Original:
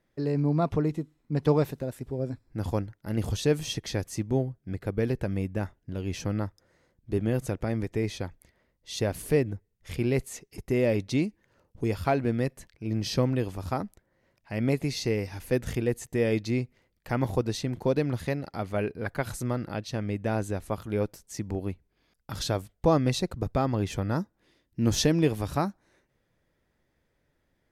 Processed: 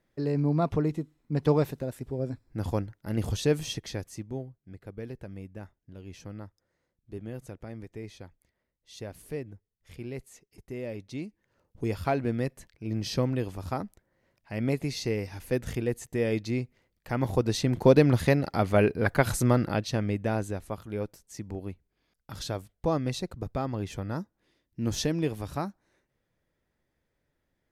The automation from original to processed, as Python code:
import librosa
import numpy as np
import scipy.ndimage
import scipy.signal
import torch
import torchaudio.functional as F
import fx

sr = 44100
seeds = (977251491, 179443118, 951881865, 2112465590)

y = fx.gain(x, sr, db=fx.line((3.6, -0.5), (4.55, -12.0), (11.07, -12.0), (11.86, -2.0), (17.11, -2.0), (17.88, 7.0), (19.58, 7.0), (20.81, -5.0)))